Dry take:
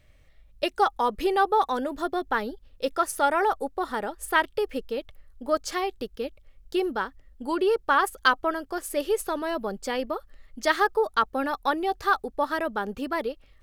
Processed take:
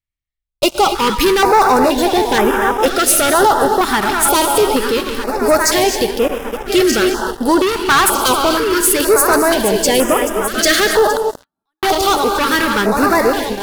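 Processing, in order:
feedback delay that plays each chunk backwards 629 ms, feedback 67%, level −10.5 dB
0:11.10–0:11.83: gate with flip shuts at −22 dBFS, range −41 dB
high-shelf EQ 3,500 Hz +9 dB
noise gate with hold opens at −39 dBFS
reverb whose tail is shaped and stops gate 290 ms rising, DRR 10.5 dB
leveller curve on the samples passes 5
notch on a step sequencer 2.1 Hz 520–4,300 Hz

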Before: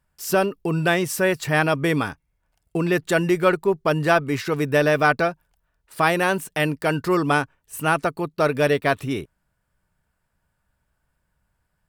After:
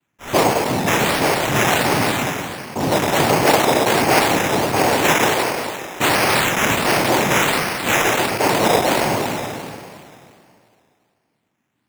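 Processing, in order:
peak hold with a decay on every bin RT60 2.45 s
0:06.28–0:08.30: parametric band 2,400 Hz +10.5 dB 0.33 octaves
cochlear-implant simulation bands 4
sample-and-hold swept by an LFO 8×, swing 60% 1.4 Hz

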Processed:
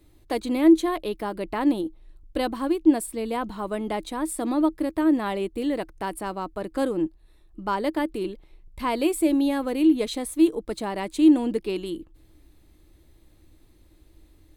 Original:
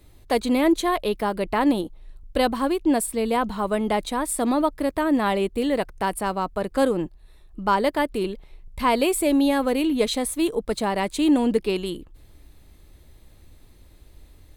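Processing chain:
parametric band 320 Hz +13 dB 0.22 octaves
level −6 dB

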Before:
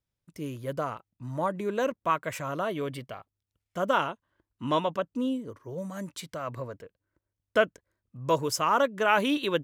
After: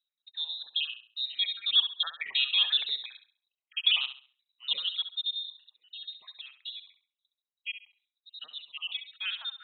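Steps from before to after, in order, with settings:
time-frequency cells dropped at random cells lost 59%
source passing by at 0:02.36, 13 m/s, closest 13 metres
voice inversion scrambler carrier 3,900 Hz
spectral tilt +4.5 dB per octave
on a send: flutter between parallel walls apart 11.6 metres, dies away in 0.39 s

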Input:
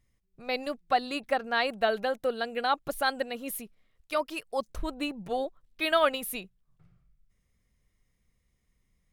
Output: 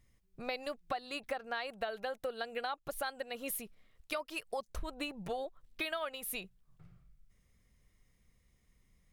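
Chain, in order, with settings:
dynamic equaliser 250 Hz, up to −7 dB, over −47 dBFS, Q 1.2
downward compressor 8 to 1, threshold −38 dBFS, peak gain reduction 18.5 dB
level +3 dB

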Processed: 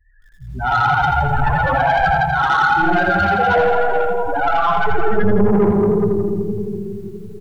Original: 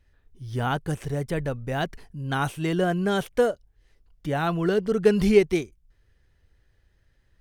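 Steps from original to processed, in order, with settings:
sub-octave generator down 1 octave, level −1 dB
hum removal 106.2 Hz, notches 3
far-end echo of a speakerphone 400 ms, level −18 dB
comb and all-pass reverb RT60 3.8 s, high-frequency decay 0.4×, pre-delay 30 ms, DRR −9 dB
0:01.35–0:02.24: power curve on the samples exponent 0.5
flat-topped bell 1,200 Hz +14.5 dB
in parallel at −2.5 dB: brickwall limiter −4 dBFS, peak gain reduction 10 dB
on the sum: spectral peaks only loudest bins 8
0:04.36–0:05.40: EQ curve with evenly spaced ripples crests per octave 1.3, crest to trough 7 dB
soft clipping −6 dBFS, distortion −13 dB
feedback echo at a low word length 83 ms, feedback 55%, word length 8 bits, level −6 dB
level −4.5 dB

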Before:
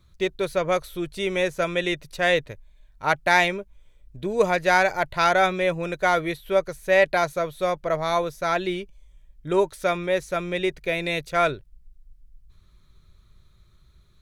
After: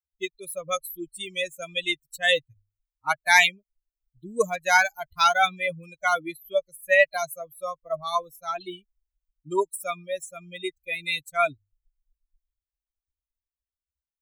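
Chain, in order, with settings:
spectral dynamics exaggerated over time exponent 3
Butterworth band-reject 4,600 Hz, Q 7.3
spectral tilt +3.5 dB per octave
mains-hum notches 50/100 Hz
level +4 dB

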